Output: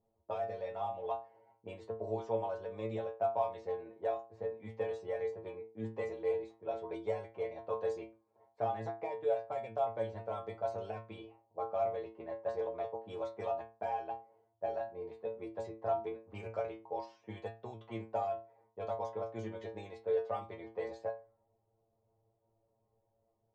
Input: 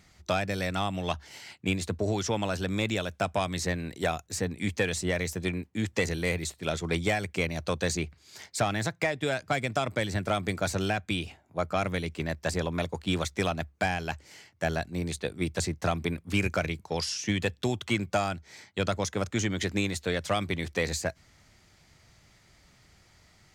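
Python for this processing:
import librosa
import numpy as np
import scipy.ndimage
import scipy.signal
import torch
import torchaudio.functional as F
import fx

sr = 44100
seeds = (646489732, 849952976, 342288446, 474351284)

y = fx.env_lowpass(x, sr, base_hz=490.0, full_db=-23.0)
y = fx.lowpass(y, sr, hz=2000.0, slope=6)
y = fx.band_shelf(y, sr, hz=650.0, db=15.5, octaves=1.7)
y = fx.stiff_resonator(y, sr, f0_hz=110.0, decay_s=0.38, stiffness=0.002)
y = y * 10.0 ** (-8.0 / 20.0)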